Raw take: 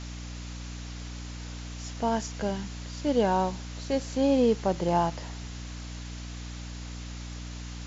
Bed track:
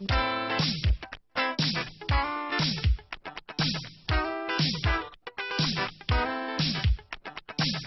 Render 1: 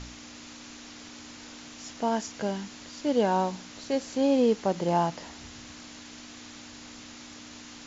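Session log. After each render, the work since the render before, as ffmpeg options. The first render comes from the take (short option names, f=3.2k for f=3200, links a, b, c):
-af "bandreject=f=60:t=h:w=4,bandreject=f=120:t=h:w=4,bandreject=f=180:t=h:w=4"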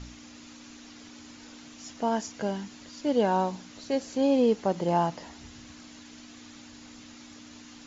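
-af "afftdn=nr=6:nf=-46"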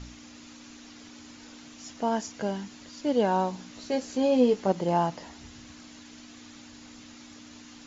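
-filter_complex "[0:a]asettb=1/sr,asplit=3[a][b][c];[a]atrim=end=3.574[d];[b]atrim=start=3.57:end=4.72,asetpts=PTS-STARTPTS,afade=t=in:d=0.004:c=qsin,afade=t=out:st=1.146:d=0.004:c=qsin,asplit=2[e][f];[f]adelay=16,volume=-6dB[g];[e][g]amix=inputs=2:normalize=0,atrim=end_sample=50715[h];[c]atrim=start=4.716[i];[d][h]acrossfade=d=0.004:c1=hsin:c2=qsin[j];[j][i]acrossfade=d=0.004:c1=qsin:c2=hsin"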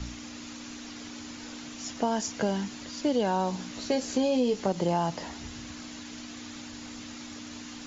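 -filter_complex "[0:a]asplit=2[a][b];[b]alimiter=limit=-21dB:level=0:latency=1:release=30,volume=0dB[c];[a][c]amix=inputs=2:normalize=0,acrossover=split=120|3000[d][e][f];[e]acompressor=threshold=-23dB:ratio=6[g];[d][g][f]amix=inputs=3:normalize=0"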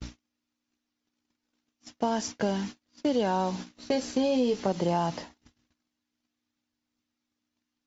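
-af "bandreject=f=6.8k:w=9.9,agate=range=-42dB:threshold=-36dB:ratio=16:detection=peak"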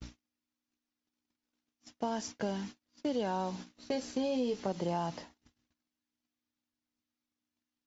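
-af "volume=-7dB"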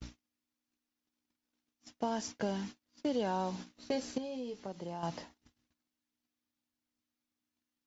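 -filter_complex "[0:a]asplit=3[a][b][c];[a]atrim=end=4.182[d];[b]atrim=start=4.178:end=5.032,asetpts=PTS-STARTPTS,volume=-8.5dB[e];[c]atrim=start=5.028[f];[d][e]acrossfade=d=0.004:c1=hsin:c2=hsin[g];[g][f]acrossfade=d=0.004:c1=hsin:c2=hsin"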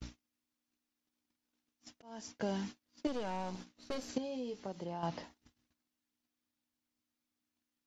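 -filter_complex "[0:a]asettb=1/sr,asplit=3[a][b][c];[a]atrim=end=3.074[d];[b]atrim=start=3.07:end=4.09,asetpts=PTS-STARTPTS,afade=t=in:d=0.004:c=qsin,afade=t=out:st=1.016:d=0.004:c=qsin,aeval=exprs='(tanh(50.1*val(0)+0.7)-tanh(0.7))/50.1':c=same[e];[c]atrim=start=4.086[f];[d][e]acrossfade=d=0.004:c1=hsin:c2=qsin[g];[g][f]acrossfade=d=0.004:c1=qsin:c2=hsin,asettb=1/sr,asplit=3[h][i][j];[h]atrim=end=4.844[k];[i]atrim=start=4.84:end=5.24,asetpts=PTS-STARTPTS,afade=t=in:d=0.004:c=qsin,afade=t=out:st=0.396:d=0.004:c=qsin,lowpass=4.9k[l];[j]atrim=start=5.236[m];[k][l]acrossfade=d=0.004:c1=hsin:c2=qsin[n];[n][m]acrossfade=d=0.004:c1=qsin:c2=hsin,asplit=2[o][p];[o]atrim=end=2.02,asetpts=PTS-STARTPTS,afade=t=out:st=2.016:d=0.004:c=hsin[q];[p]atrim=start=2.02,asetpts=PTS-STARTPTS,afade=t=in:d=0.53[r];[q][r]concat=n=2:v=0:a=1"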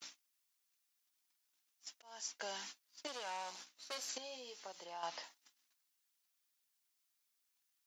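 -af "highpass=880,highshelf=f=4.5k:g=10"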